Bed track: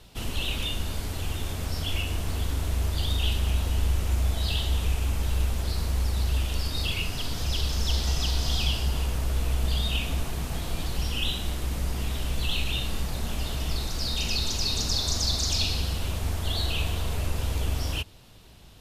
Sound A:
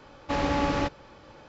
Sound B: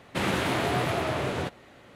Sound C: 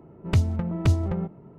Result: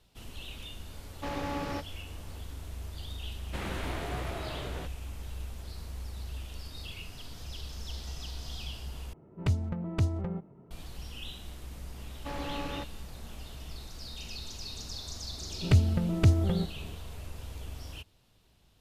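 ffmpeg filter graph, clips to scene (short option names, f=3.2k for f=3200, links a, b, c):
-filter_complex "[1:a]asplit=2[a][b];[3:a]asplit=2[c][d];[0:a]volume=-14dB[e];[d]equalizer=f=1k:t=o:w=0.38:g=-8[f];[e]asplit=2[g][h];[g]atrim=end=9.134[i];[c]atrim=end=1.58,asetpts=PTS-STARTPTS,volume=-7dB[j];[h]atrim=start=10.706[k];[a]atrim=end=1.48,asetpts=PTS-STARTPTS,volume=-9dB,afade=t=in:d=0.004:c=hsin,afade=t=out:st=1.476:d=0.004:c=hsin,adelay=930[l];[2:a]atrim=end=1.95,asetpts=PTS-STARTPTS,volume=-11dB,afade=t=in:d=0.004:c=hsin,afade=t=out:st=1.946:d=0.004:c=hsin,adelay=3380[m];[b]atrim=end=1.48,asetpts=PTS-STARTPTS,volume=-11.5dB,afade=t=in:d=0.004:c=hsin,afade=t=out:st=1.476:d=0.004:c=hsin,adelay=11960[n];[f]atrim=end=1.58,asetpts=PTS-STARTPTS,volume=-1dB,afade=t=in:d=0.004:c=hsin,afade=t=out:st=1.576:d=0.004:c=hsin,adelay=15380[o];[i][j]acrossfade=d=0.004:c1=hsin:c2=hsin[p];[p][k]acrossfade=d=0.004:c1=hsin:c2=hsin[q];[q][l][m][n][o]amix=inputs=5:normalize=0"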